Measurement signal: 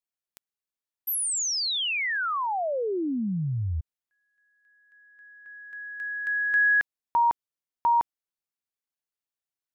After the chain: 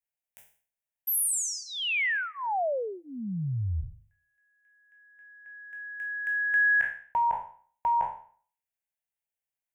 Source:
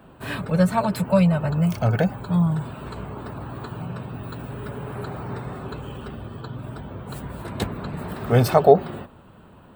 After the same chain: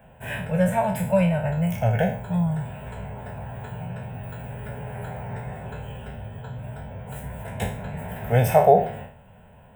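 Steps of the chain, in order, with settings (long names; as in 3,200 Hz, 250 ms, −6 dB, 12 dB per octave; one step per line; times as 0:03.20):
peak hold with a decay on every bin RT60 0.47 s
phaser with its sweep stopped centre 1,200 Hz, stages 6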